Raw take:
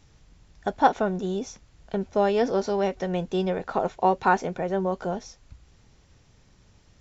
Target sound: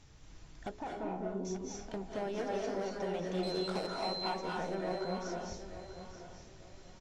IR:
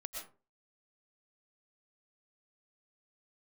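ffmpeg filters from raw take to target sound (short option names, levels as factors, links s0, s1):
-filter_complex "[0:a]bandreject=f=60:t=h:w=6,bandreject=f=120:t=h:w=6,bandreject=f=180:t=h:w=6,bandreject=f=240:t=h:w=6,bandreject=f=300:t=h:w=6,bandreject=f=360:t=h:w=6,bandreject=f=420:t=h:w=6,bandreject=f=480:t=h:w=6,bandreject=f=540:t=h:w=6,acompressor=threshold=0.0126:ratio=3,asettb=1/sr,asplit=3[s0][s1][s2];[s0]atrim=end=3.434[s3];[s1]atrim=start=3.43:end=4.03,asetpts=PTS-STARTPTS,afade=t=in:d=0.004:c=qsin,afade=t=out:st=0.596:d=0.004:c=qsin,aeval=exprs='val(0)+0.01*sin(2*PI*4100*n/s)':c=same[s4];[s2]atrim=start=4.026[s5];[s3][s4]acrossfade=d=0.004:c1=hsin:c2=qsin[s6];[s6][s5]acrossfade=d=0.004:c1=qsin:c2=hsin,asoftclip=type=hard:threshold=0.0224,asettb=1/sr,asplit=3[s7][s8][s9];[s7]atrim=end=0.794[s10];[s8]atrim=start=0.79:end=1.45,asetpts=PTS-STARTPTS,afade=t=in:d=0.004:c=qsin,afade=t=out:st=0.656:d=0.004:c=qsin,adynamicsmooth=sensitivity=1:basefreq=850[s11];[s9]atrim=start=1.446[s12];[s10][s11]acrossfade=d=0.004:c1=hsin:c2=qsin[s13];[s13][s12]acrossfade=d=0.004:c1=qsin:c2=hsin,aecho=1:1:883|1766|2649:0.251|0.0728|0.0211[s14];[1:a]atrim=start_sample=2205,asetrate=22491,aresample=44100[s15];[s14][s15]afir=irnorm=-1:irlink=0"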